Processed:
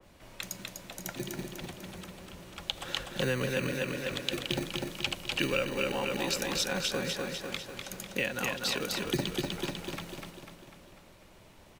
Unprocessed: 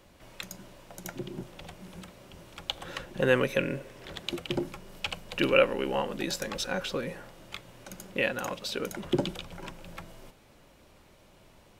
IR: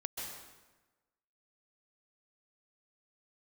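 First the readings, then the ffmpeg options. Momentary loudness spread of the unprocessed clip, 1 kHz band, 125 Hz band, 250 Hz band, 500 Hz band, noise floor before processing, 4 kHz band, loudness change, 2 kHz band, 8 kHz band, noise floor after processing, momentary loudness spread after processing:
21 LU, -2.5 dB, +0.5 dB, -1.5 dB, -4.5 dB, -58 dBFS, +3.0 dB, -2.0 dB, -1.0 dB, +5.0 dB, -56 dBFS, 14 LU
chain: -filter_complex "[0:a]aecho=1:1:248|496|744|992|1240|1488|1736:0.562|0.309|0.17|0.0936|0.0515|0.0283|0.0156,acrossover=split=200[a][b];[b]acompressor=threshold=-30dB:ratio=4[c];[a][c]amix=inputs=2:normalize=0,acrossover=split=380|2000[d][e][f];[d]acrusher=samples=21:mix=1:aa=0.000001[g];[g][e][f]amix=inputs=3:normalize=0,adynamicequalizer=threshold=0.00447:dfrequency=2200:dqfactor=0.7:tfrequency=2200:tqfactor=0.7:attack=5:release=100:ratio=0.375:range=2.5:mode=boostabove:tftype=highshelf"

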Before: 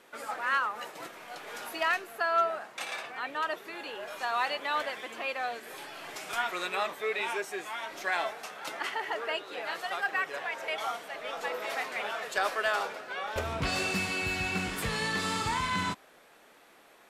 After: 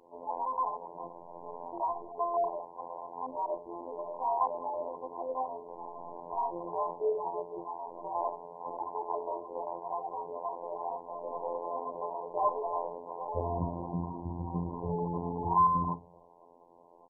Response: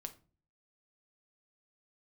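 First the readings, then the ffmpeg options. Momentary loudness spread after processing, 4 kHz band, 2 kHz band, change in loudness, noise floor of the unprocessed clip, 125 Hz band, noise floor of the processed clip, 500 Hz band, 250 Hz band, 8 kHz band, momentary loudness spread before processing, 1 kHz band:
11 LU, under -40 dB, under -40 dB, -3.0 dB, -58 dBFS, +2.5 dB, -58 dBFS, +1.0 dB, +0.5 dB, under -35 dB, 10 LU, +1.0 dB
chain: -filter_complex "[0:a]asplit=2[a][b];[1:a]atrim=start_sample=2205[c];[b][c]afir=irnorm=-1:irlink=0,volume=2dB[d];[a][d]amix=inputs=2:normalize=0,acrusher=bits=4:mode=log:mix=0:aa=0.000001,adynamicequalizer=threshold=0.00708:dfrequency=810:dqfactor=4:tfrequency=810:tqfactor=4:attack=5:release=100:ratio=0.375:range=2.5:mode=cutabove:tftype=bell,bandreject=f=50:t=h:w=6,bandreject=f=100:t=h:w=6,bandreject=f=150:t=h:w=6,bandreject=f=200:t=h:w=6,bandreject=f=250:t=h:w=6,bandreject=f=300:t=h:w=6,bandreject=f=350:t=h:w=6,afftfilt=real='hypot(re,im)*cos(PI*b)':imag='0':win_size=2048:overlap=0.75,asplit=2[e][f];[f]adelay=65,lowpass=f=2.6k:p=1,volume=-20dB,asplit=2[g][h];[h]adelay=65,lowpass=f=2.6k:p=1,volume=0.33,asplit=2[i][j];[j]adelay=65,lowpass=f=2.6k:p=1,volume=0.33[k];[e][g][i][k]amix=inputs=4:normalize=0,asoftclip=type=tanh:threshold=-12dB,lowpass=3.3k,equalizer=f=1.1k:t=o:w=0.24:g=12.5" -ar 22050 -c:a mp2 -b:a 8k

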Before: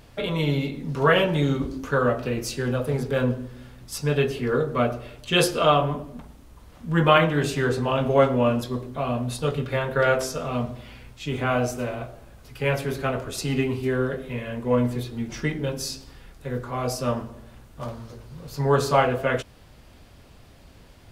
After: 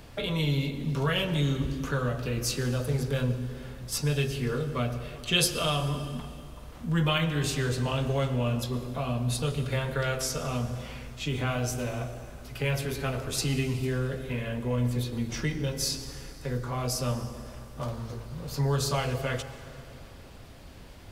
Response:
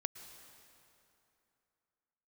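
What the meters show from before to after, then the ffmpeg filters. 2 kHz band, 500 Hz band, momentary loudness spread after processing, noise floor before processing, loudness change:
-6.5 dB, -9.5 dB, 14 LU, -50 dBFS, -5.5 dB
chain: -filter_complex "[0:a]acrossover=split=140|3000[a][b][c];[b]acompressor=threshold=-36dB:ratio=3[d];[a][d][c]amix=inputs=3:normalize=0,asplit=2[e][f];[1:a]atrim=start_sample=2205[g];[f][g]afir=irnorm=-1:irlink=0,volume=7.5dB[h];[e][h]amix=inputs=2:normalize=0,volume=-7.5dB"

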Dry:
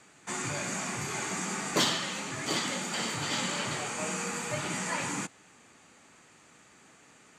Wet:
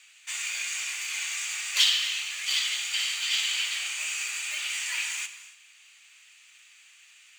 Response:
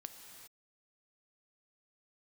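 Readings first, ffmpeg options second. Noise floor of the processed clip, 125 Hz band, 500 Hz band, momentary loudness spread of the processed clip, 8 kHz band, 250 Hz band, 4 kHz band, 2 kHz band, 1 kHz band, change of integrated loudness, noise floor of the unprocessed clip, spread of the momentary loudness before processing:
-56 dBFS, under -40 dB, under -25 dB, 9 LU, +3.5 dB, under -35 dB, +8.5 dB, +4.5 dB, -12.0 dB, +4.5 dB, -59 dBFS, 7 LU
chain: -filter_complex "[0:a]acrusher=bits=4:mode=log:mix=0:aa=0.000001,highpass=f=2.7k:t=q:w=2.7,asplit=2[a][b];[1:a]atrim=start_sample=2205,asetrate=61740,aresample=44100[c];[b][c]afir=irnorm=-1:irlink=0,volume=7.5dB[d];[a][d]amix=inputs=2:normalize=0,volume=-3.5dB"

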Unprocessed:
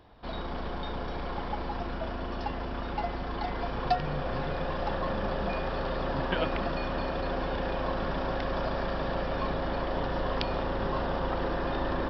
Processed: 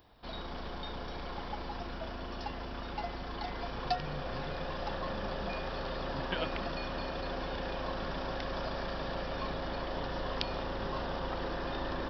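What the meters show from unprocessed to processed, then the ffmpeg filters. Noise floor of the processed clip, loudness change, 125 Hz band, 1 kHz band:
-41 dBFS, -5.5 dB, -6.5 dB, -5.5 dB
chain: -af "aemphasis=mode=production:type=75kf,volume=-6.5dB"

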